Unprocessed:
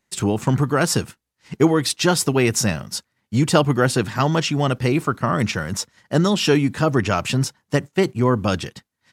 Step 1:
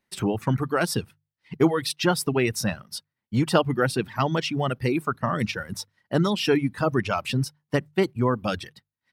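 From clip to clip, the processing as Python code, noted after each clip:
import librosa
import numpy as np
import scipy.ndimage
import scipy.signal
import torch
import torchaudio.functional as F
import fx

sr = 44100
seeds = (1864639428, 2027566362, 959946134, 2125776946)

y = fx.hum_notches(x, sr, base_hz=50, count=3)
y = fx.dereverb_blind(y, sr, rt60_s=1.4)
y = fx.peak_eq(y, sr, hz=7000.0, db=-12.0, octaves=0.43)
y = F.gain(torch.from_numpy(y), -3.5).numpy()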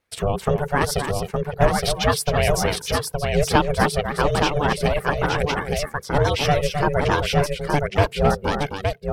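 y = fx.vibrato(x, sr, rate_hz=12.0, depth_cents=61.0)
y = fx.echo_multitap(y, sr, ms=(263, 867), db=(-7.5, -4.0))
y = y * np.sin(2.0 * np.pi * 290.0 * np.arange(len(y)) / sr)
y = F.gain(torch.from_numpy(y), 5.5).numpy()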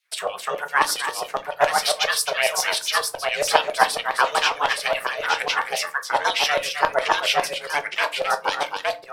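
y = fx.filter_lfo_highpass(x, sr, shape='saw_down', hz=7.3, low_hz=650.0, high_hz=3800.0, q=1.4)
y = fx.room_shoebox(y, sr, seeds[0], volume_m3=130.0, walls='furnished', distance_m=0.57)
y = F.gain(torch.from_numpy(y), 2.5).numpy()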